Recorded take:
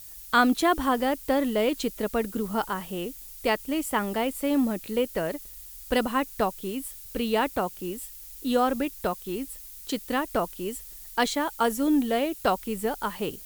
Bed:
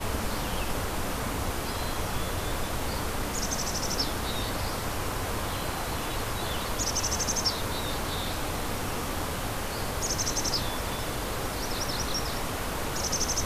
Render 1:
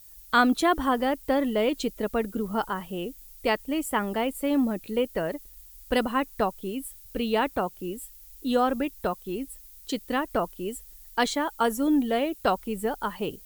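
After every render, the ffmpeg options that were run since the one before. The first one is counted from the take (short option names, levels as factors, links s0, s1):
-af "afftdn=nr=8:nf=-44"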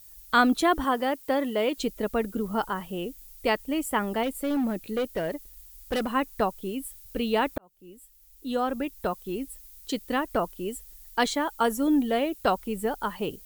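-filter_complex "[0:a]asettb=1/sr,asplit=3[s0][s1][s2];[s0]atrim=end=0.844[s3];[s1]atrim=start=0.84:end=1.78,asetpts=PTS-STARTPTS,afade=t=in:d=0.004:c=qsin,afade=t=out:st=0.936:d=0.004:c=qsin,highpass=f=270:p=1[s4];[s2]atrim=start=1.776[s5];[s3][s4]acrossfade=d=0.004:c1=hsin:c2=qsin[s6];[s6][s5]acrossfade=d=0.004:c1=qsin:c2=hsin,asettb=1/sr,asplit=3[s7][s8][s9];[s7]atrim=end=4.234[s10];[s8]atrim=start=4.23:end=6.14,asetpts=PTS-STARTPTS,afade=t=in:d=0.004:c=qsin,afade=t=out:st=1.906:d=0.004:c=qsin,volume=14.1,asoftclip=hard,volume=0.0708[s11];[s9]atrim=start=6.136[s12];[s10][s11]acrossfade=d=0.004:c1=hsin:c2=qsin[s13];[s13][s12]acrossfade=d=0.004:c1=qsin:c2=hsin,asplit=2[s14][s15];[s14]atrim=end=7.58,asetpts=PTS-STARTPTS,afade=t=out:st=7.576:d=0.004:c=hsin[s16];[s15]atrim=start=7.58,asetpts=PTS-STARTPTS,afade=t=in:d=1.63[s17];[s16][s17]concat=n=2:v=0:a=1"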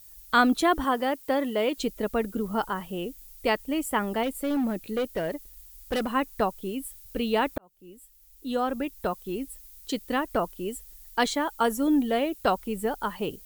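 -af anull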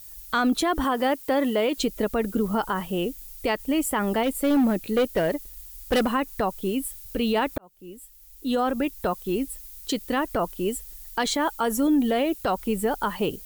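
-af "acontrast=56,alimiter=limit=0.178:level=0:latency=1:release=69"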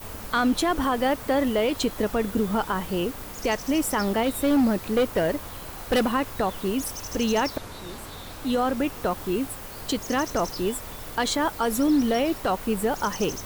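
-filter_complex "[1:a]volume=0.376[s0];[0:a][s0]amix=inputs=2:normalize=0"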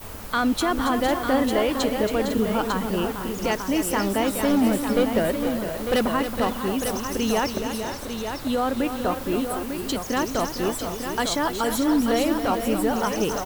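-af "aecho=1:1:275|457|502|899:0.335|0.335|0.237|0.422"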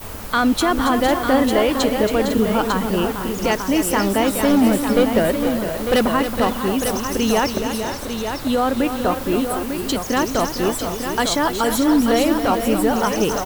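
-af "volume=1.78"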